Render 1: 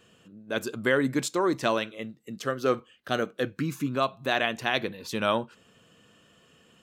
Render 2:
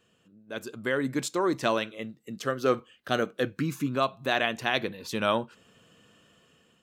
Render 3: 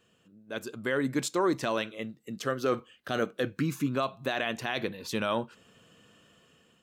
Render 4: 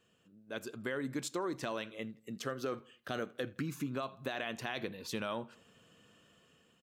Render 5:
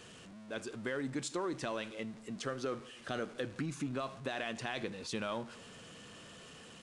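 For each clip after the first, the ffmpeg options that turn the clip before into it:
-af "dynaudnorm=f=420:g=5:m=11.5dB,volume=-8dB"
-af "alimiter=limit=-17.5dB:level=0:latency=1:release=24"
-filter_complex "[0:a]acompressor=threshold=-29dB:ratio=5,asplit=2[a][b];[b]adelay=82,lowpass=f=4k:p=1,volume=-23dB,asplit=2[c][d];[d]adelay=82,lowpass=f=4k:p=1,volume=0.47,asplit=2[e][f];[f]adelay=82,lowpass=f=4k:p=1,volume=0.47[g];[a][c][e][g]amix=inputs=4:normalize=0,volume=-4.5dB"
-af "aeval=exprs='val(0)+0.5*0.00422*sgn(val(0))':c=same,aresample=22050,aresample=44100,volume=-1dB"

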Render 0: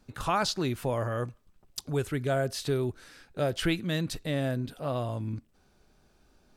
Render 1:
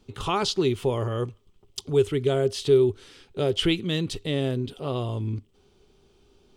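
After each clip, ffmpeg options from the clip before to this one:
-af "equalizer=f=100:t=o:w=0.33:g=6,equalizer=f=400:t=o:w=0.33:g=12,equalizer=f=630:t=o:w=0.33:g=-6,equalizer=f=1.6k:t=o:w=0.33:g=-9,equalizer=f=3.15k:t=o:w=0.33:g=10,equalizer=f=12.5k:t=o:w=0.33:g=-12,volume=2dB"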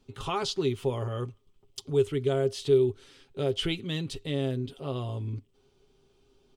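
-af "aecho=1:1:7.4:0.41,volume=-6dB"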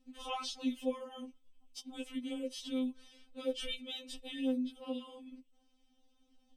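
-af "afftfilt=real='re*3.46*eq(mod(b,12),0)':imag='im*3.46*eq(mod(b,12),0)':win_size=2048:overlap=0.75,volume=-4dB"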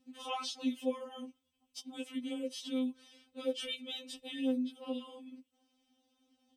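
-af "highpass=100,volume=1dB"

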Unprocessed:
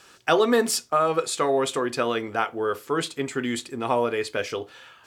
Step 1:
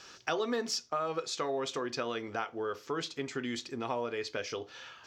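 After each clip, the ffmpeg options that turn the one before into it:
-af "highshelf=f=7.4k:t=q:w=3:g=-9,acompressor=threshold=-37dB:ratio=2,volume=-1.5dB"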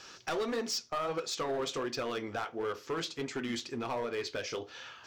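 -af "asoftclip=type=hard:threshold=-30.5dB,flanger=delay=2.2:depth=9:regen=-65:speed=1.5:shape=triangular,volume=5.5dB"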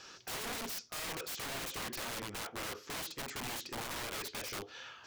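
-af "aeval=exprs='(mod(47.3*val(0)+1,2)-1)/47.3':c=same,volume=-2dB"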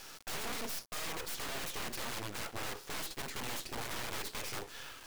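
-af "acrusher=bits=6:dc=4:mix=0:aa=0.000001,volume=5dB"

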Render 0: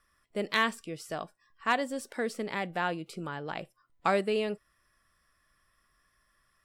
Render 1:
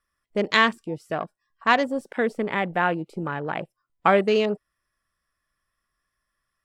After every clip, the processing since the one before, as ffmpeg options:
-af "afwtdn=0.00708,volume=8.5dB"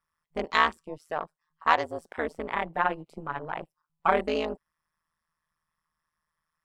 -af "equalizer=f=100:t=o:w=0.67:g=-3,equalizer=f=250:t=o:w=0.67:g=-8,equalizer=f=1k:t=o:w=0.67:g=7,tremolo=f=160:d=0.974,volume=-2.5dB"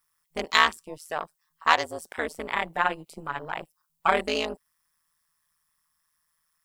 -af "crystalizer=i=5.5:c=0,volume=-1.5dB"

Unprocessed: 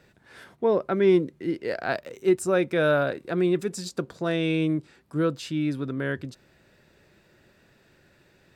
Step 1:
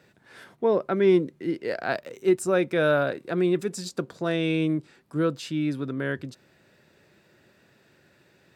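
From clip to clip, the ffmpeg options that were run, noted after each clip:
-af "highpass=100"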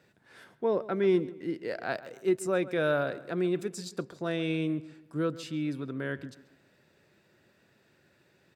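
-filter_complex "[0:a]asplit=2[a][b];[b]adelay=136,lowpass=f=3.4k:p=1,volume=-17dB,asplit=2[c][d];[d]adelay=136,lowpass=f=3.4k:p=1,volume=0.42,asplit=2[e][f];[f]adelay=136,lowpass=f=3.4k:p=1,volume=0.42,asplit=2[g][h];[h]adelay=136,lowpass=f=3.4k:p=1,volume=0.42[i];[a][c][e][g][i]amix=inputs=5:normalize=0,volume=-5.5dB"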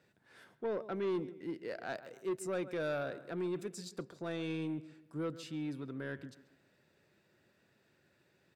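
-af "asoftclip=type=tanh:threshold=-24dB,volume=-6dB"

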